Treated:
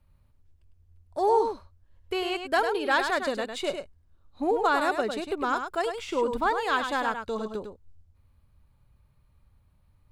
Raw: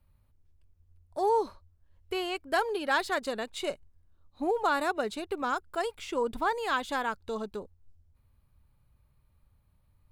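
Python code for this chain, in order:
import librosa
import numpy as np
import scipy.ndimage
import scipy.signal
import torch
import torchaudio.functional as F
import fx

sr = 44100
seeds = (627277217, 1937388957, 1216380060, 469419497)

y = fx.high_shelf(x, sr, hz=11000.0, db=-8.5)
y = y + 10.0 ** (-7.0 / 20.0) * np.pad(y, (int(102 * sr / 1000.0), 0))[:len(y)]
y = F.gain(torch.from_numpy(y), 3.0).numpy()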